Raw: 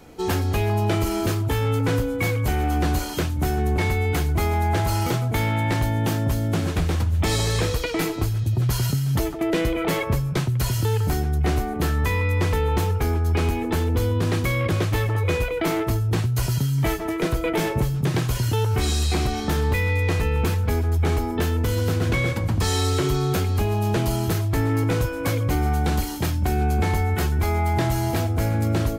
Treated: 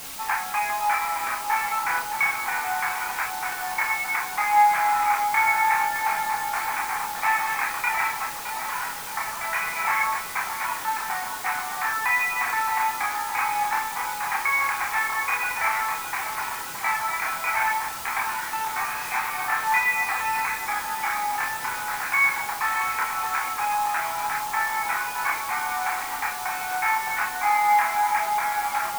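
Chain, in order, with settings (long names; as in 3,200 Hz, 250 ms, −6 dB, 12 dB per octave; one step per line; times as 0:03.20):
Chebyshev band-pass filter 800–2,400 Hz, order 4
in parallel at −3.5 dB: bit-depth reduction 6 bits, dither triangular
on the sum: multi-voice chorus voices 4, 0.19 Hz, delay 29 ms, depth 4 ms
tape delay 617 ms, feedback 85%, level −5 dB, low-pass 1,100 Hz
level +6 dB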